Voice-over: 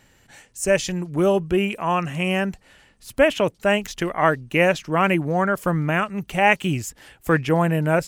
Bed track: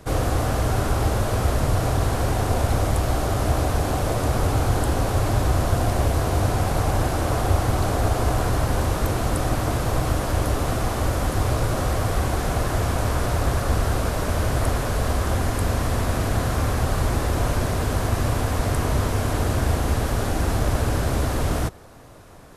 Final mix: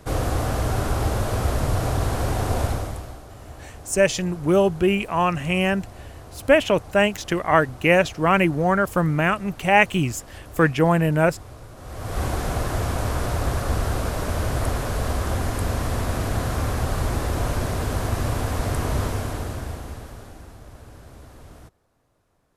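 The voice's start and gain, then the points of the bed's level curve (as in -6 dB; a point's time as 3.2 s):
3.30 s, +1.0 dB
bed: 2.65 s -1.5 dB
3.24 s -19.5 dB
11.76 s -19.5 dB
12.22 s -2 dB
19.05 s -2 dB
20.57 s -22 dB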